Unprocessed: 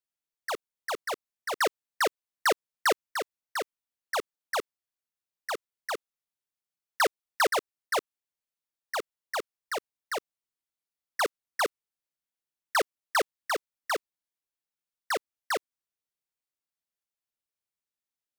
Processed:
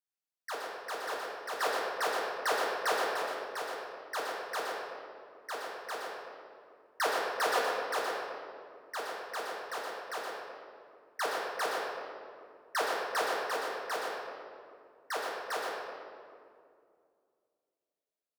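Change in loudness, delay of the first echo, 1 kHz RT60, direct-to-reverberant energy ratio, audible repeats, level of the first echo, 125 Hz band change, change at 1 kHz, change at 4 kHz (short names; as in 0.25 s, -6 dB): -3.5 dB, 0.119 s, 2.1 s, -5.0 dB, 1, -5.0 dB, n/a, -2.0 dB, -3.5 dB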